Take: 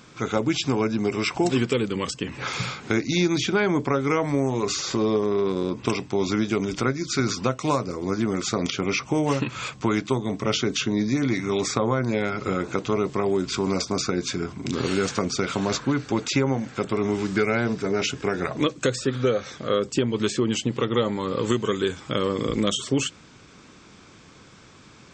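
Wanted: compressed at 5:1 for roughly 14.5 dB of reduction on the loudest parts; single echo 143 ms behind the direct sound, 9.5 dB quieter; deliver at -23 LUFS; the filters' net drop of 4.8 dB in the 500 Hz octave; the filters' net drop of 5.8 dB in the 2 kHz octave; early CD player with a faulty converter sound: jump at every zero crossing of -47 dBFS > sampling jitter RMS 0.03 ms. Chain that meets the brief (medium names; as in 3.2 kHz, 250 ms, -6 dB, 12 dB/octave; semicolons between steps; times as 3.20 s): peaking EQ 500 Hz -6 dB; peaking EQ 2 kHz -7.5 dB; compression 5:1, threshold -37 dBFS; delay 143 ms -9.5 dB; jump at every zero crossing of -47 dBFS; sampling jitter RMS 0.03 ms; trim +15.5 dB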